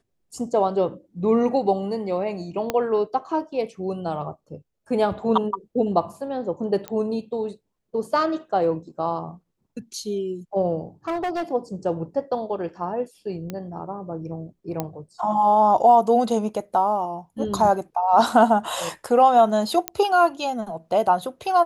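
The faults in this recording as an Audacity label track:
2.700000	2.700000	click −9 dBFS
6.880000	6.880000	click −15 dBFS
11.080000	11.430000	clipping −22.5 dBFS
13.500000	13.500000	click −17 dBFS
14.800000	14.800000	click −11 dBFS
19.880000	19.880000	click −6 dBFS

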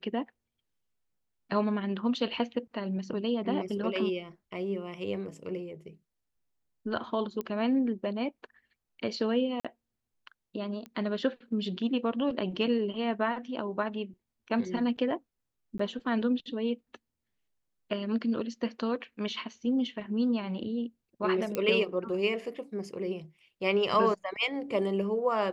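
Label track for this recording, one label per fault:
7.410000	7.410000	click −22 dBFS
9.600000	9.650000	drop-out 46 ms
10.860000	10.860000	click −29 dBFS
15.780000	15.790000	drop-out 14 ms
21.550000	21.550000	click −16 dBFS

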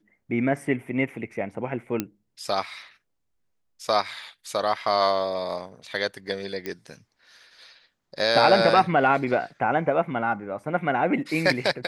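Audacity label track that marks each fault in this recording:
2.000000	2.000000	click −11 dBFS
6.660000	6.660000	click −16 dBFS

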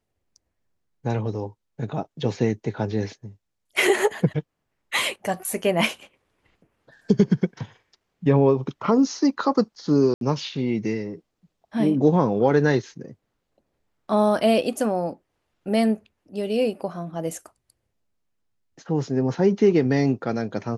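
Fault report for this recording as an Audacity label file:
10.140000	10.210000	drop-out 72 ms

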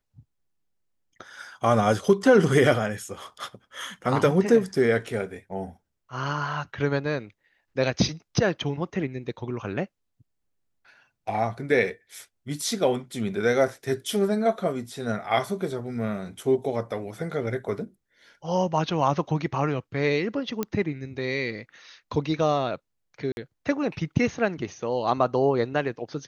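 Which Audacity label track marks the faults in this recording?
20.630000	20.630000	click −13 dBFS
23.320000	23.370000	drop-out 51 ms

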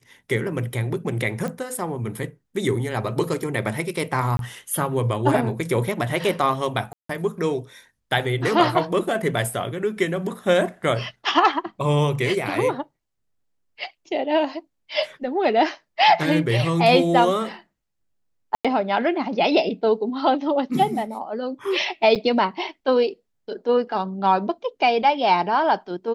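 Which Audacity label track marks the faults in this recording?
1.480000	1.480000	click −17 dBFS
4.370000	4.390000	drop-out 22 ms
6.930000	7.090000	drop-out 164 ms
18.550000	18.650000	drop-out 96 ms
22.150000	22.160000	drop-out 7.5 ms

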